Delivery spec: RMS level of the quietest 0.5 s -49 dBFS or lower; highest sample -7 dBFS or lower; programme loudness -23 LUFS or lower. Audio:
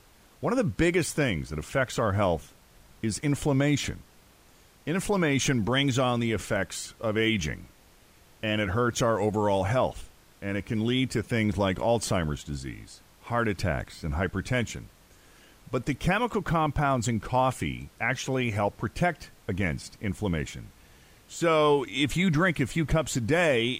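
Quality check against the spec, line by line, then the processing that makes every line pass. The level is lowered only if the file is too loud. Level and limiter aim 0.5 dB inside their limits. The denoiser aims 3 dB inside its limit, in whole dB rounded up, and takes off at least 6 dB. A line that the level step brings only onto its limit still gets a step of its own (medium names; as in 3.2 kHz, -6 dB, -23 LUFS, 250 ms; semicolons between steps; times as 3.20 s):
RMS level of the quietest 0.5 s -57 dBFS: pass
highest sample -11.0 dBFS: pass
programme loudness -27.5 LUFS: pass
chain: none needed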